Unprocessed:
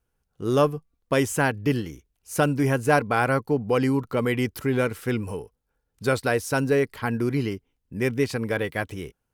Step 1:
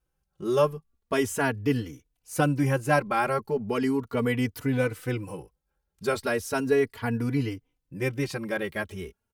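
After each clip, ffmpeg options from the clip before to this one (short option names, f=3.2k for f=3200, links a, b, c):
-filter_complex "[0:a]asplit=2[a][b];[b]adelay=3.4,afreqshift=0.37[c];[a][c]amix=inputs=2:normalize=1"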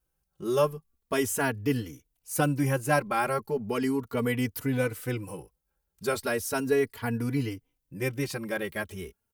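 -af "highshelf=f=9k:g=11.5,volume=-2dB"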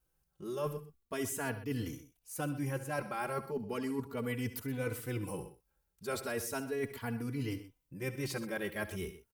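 -af "areverse,acompressor=threshold=-34dB:ratio=6,areverse,aecho=1:1:66|72|125:0.15|0.158|0.168"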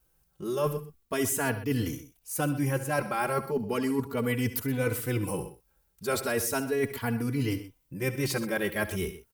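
-af "highshelf=f=12k:g=5,volume=8dB"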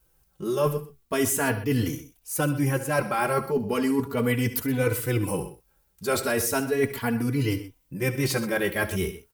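-af "flanger=delay=2:depth=9.9:regen=-60:speed=0.4:shape=sinusoidal,volume=8dB"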